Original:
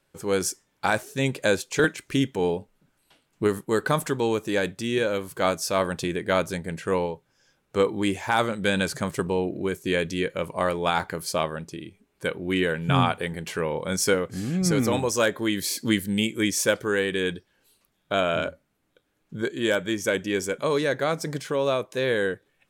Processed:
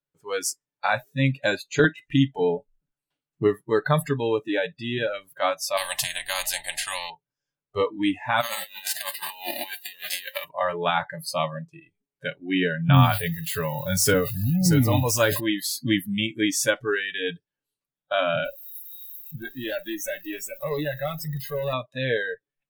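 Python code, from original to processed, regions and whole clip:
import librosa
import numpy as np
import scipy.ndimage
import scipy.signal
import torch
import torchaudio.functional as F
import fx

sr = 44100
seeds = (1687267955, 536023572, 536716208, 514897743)

y = fx.chain(x, sr, fx.low_shelf(hz=71.0, db=9.5),
    fx.spectral_comp(ratio=4.0), at=(5.77, 7.1))
y = fx.envelope_flatten(y, sr, power=0.3, at=(8.4, 10.43), fade=0.02)
y = fx.highpass(y, sr, hz=300.0, slope=12, at=(8.4, 10.43), fade=0.02)
y = fx.over_compress(y, sr, threshold_db=-31.0, ratio=-0.5, at=(8.4, 10.43), fade=0.02)
y = fx.chain(y, sr, fx.crossing_spikes(level_db=-23.5),
    fx.peak_eq(hz=100.0, db=12.5, octaves=0.31),
    fx.sustainer(db_per_s=74.0), at=(12.93, 15.4))
y = fx.chain(y, sr, fx.crossing_spikes(level_db=-27.0),
    fx.tube_stage(drive_db=24.0, bias=0.2), at=(18.45, 21.73))
y = fx.noise_reduce_blind(y, sr, reduce_db=25)
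y = fx.peak_eq(y, sr, hz=140.0, db=3.0, octaves=1.0)
y = y + 0.47 * np.pad(y, (int(6.9 * sr / 1000.0), 0))[:len(y)]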